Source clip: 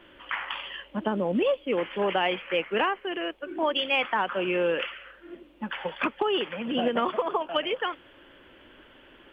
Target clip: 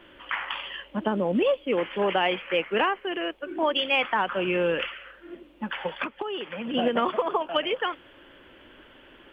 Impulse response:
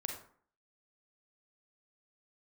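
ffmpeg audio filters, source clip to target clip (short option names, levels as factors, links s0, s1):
-filter_complex "[0:a]asettb=1/sr,asplit=3[s0][s1][s2];[s0]atrim=end=3.994[s3];[s1]atrim=start=3.99:end=4.89,asetpts=PTS-STARTPTS,afade=t=in:d=0.004:c=qsin,afade=t=out:st=0.896:d=0.004:c=qsin,asubboost=boost=5.5:cutoff=250[s4];[s2]atrim=start=4.886[s5];[s3][s4]acrossfade=d=0.004:c1=hsin:c2=qsin[s6];[s6][s5]acrossfade=d=0.004:c1=qsin:c2=hsin,asettb=1/sr,asplit=3[s7][s8][s9];[s7]atrim=end=6.024[s10];[s8]atrim=start=6.02:end=6.74,asetpts=PTS-STARTPTS,afade=t=in:d=0.004:c=qsin,afade=t=out:st=0.716:d=0.004:c=qsin,acompressor=threshold=0.0282:ratio=5[s11];[s9]atrim=start=6.736[s12];[s10][s11]acrossfade=d=0.004:c1=hsin:c2=qsin[s13];[s13][s12]acrossfade=d=0.004:c1=qsin:c2=hsin,volume=1.19"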